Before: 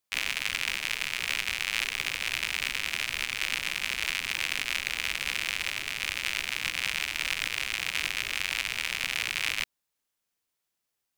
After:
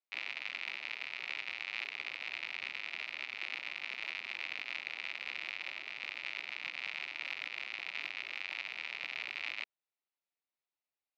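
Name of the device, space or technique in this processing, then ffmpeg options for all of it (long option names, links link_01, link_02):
phone earpiece: -af "highpass=400,equalizer=frequency=470:width_type=q:width=4:gain=-5,equalizer=frequency=1100:width_type=q:width=4:gain=-4,equalizer=frequency=1600:width_type=q:width=4:gain=-8,equalizer=frequency=3200:width_type=q:width=4:gain=-7,lowpass=frequency=3800:width=0.5412,lowpass=frequency=3800:width=1.3066,volume=-6.5dB"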